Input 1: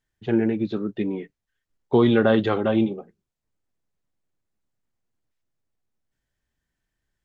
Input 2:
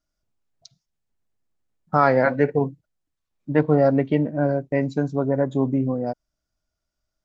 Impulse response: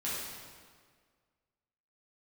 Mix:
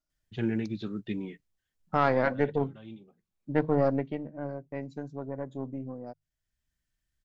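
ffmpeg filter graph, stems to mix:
-filter_complex "[0:a]equalizer=frequency=580:width=0.44:gain=-13.5,adelay=100,volume=0dB[link_01];[1:a]bandreject=frequency=50:width_type=h:width=6,bandreject=frequency=100:width_type=h:width=6,bandreject=frequency=150:width_type=h:width=6,aeval=exprs='(tanh(2.51*val(0)+0.55)-tanh(0.55))/2.51':channel_layout=same,volume=-5dB,afade=type=out:start_time=3.84:duration=0.35:silence=0.398107,asplit=2[link_02][link_03];[link_03]apad=whole_len=323950[link_04];[link_01][link_04]sidechaincompress=threshold=-44dB:ratio=5:attack=5.2:release=744[link_05];[link_05][link_02]amix=inputs=2:normalize=0"

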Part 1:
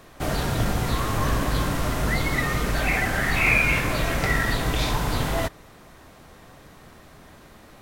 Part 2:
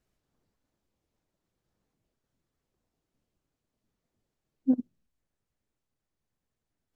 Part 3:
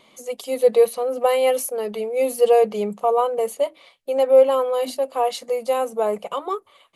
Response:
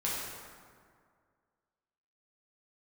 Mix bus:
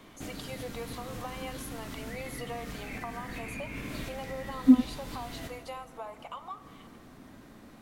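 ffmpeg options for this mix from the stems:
-filter_complex "[0:a]acrossover=split=580|1700[link_01][link_02][link_03];[link_01]acompressor=threshold=-33dB:ratio=4[link_04];[link_02]acompressor=threshold=-48dB:ratio=4[link_05];[link_03]acompressor=threshold=-35dB:ratio=4[link_06];[link_04][link_05][link_06]amix=inputs=3:normalize=0,volume=-10dB,asplit=2[link_07][link_08];[link_08]volume=-10dB[link_09];[1:a]volume=-4.5dB[link_10];[2:a]highpass=frequency=820:width=0.5412,highpass=frequency=820:width=1.3066,highshelf=frequency=6800:gain=-12,acompressor=threshold=-36dB:ratio=6,volume=-4.5dB,asplit=3[link_11][link_12][link_13];[link_12]volume=-16.5dB[link_14];[link_13]apad=whole_len=344449[link_15];[link_07][link_15]sidechaincompress=threshold=-53dB:ratio=8:attack=5.8:release=135[link_16];[3:a]atrim=start_sample=2205[link_17];[link_09][link_14]amix=inputs=2:normalize=0[link_18];[link_18][link_17]afir=irnorm=-1:irlink=0[link_19];[link_16][link_10][link_11][link_19]amix=inputs=4:normalize=0,equalizer=frequency=250:width_type=o:width=0.82:gain=11.5"

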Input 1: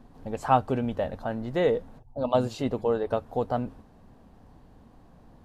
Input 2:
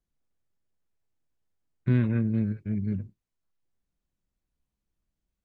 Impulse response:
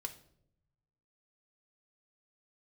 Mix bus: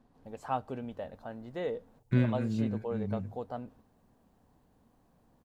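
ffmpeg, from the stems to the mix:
-filter_complex "[0:a]volume=-12dB,asplit=3[link_01][link_02][link_03];[link_02]volume=-17dB[link_04];[1:a]highshelf=frequency=4600:gain=11.5,adelay=250,volume=-2dB,asplit=2[link_05][link_06];[link_06]volume=-13.5dB[link_07];[link_03]apad=whole_len=250978[link_08];[link_05][link_08]sidechaincompress=threshold=-39dB:ratio=8:attack=16:release=343[link_09];[2:a]atrim=start_sample=2205[link_10];[link_04][link_07]amix=inputs=2:normalize=0[link_11];[link_11][link_10]afir=irnorm=-1:irlink=0[link_12];[link_01][link_09][link_12]amix=inputs=3:normalize=0,lowshelf=frequency=64:gain=-8.5"

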